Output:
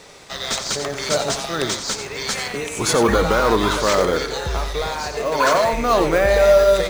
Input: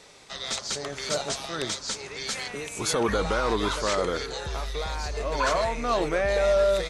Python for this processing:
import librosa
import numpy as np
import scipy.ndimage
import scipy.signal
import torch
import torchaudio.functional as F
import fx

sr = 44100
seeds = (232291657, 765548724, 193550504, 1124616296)

p1 = fx.highpass(x, sr, hz=130.0, slope=12, at=(4.82, 5.73))
p2 = fx.sample_hold(p1, sr, seeds[0], rate_hz=5400.0, jitter_pct=0)
p3 = p1 + (p2 * 10.0 ** (-11.5 / 20.0))
p4 = p3 + 10.0 ** (-9.5 / 20.0) * np.pad(p3, (int(89 * sr / 1000.0), 0))[:len(p3)]
y = p4 * 10.0 ** (6.5 / 20.0)